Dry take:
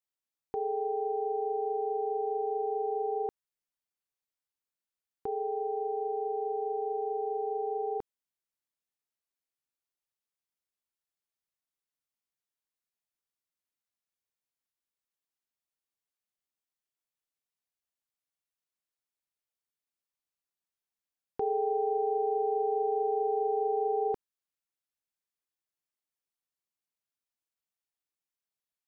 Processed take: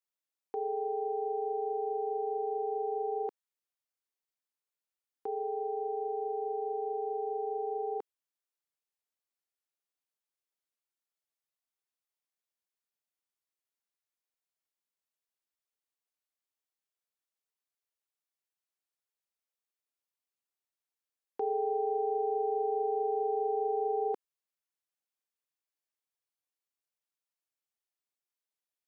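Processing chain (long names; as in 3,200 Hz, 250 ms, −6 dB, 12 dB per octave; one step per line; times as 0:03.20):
Chebyshev high-pass filter 380 Hz
level −1.5 dB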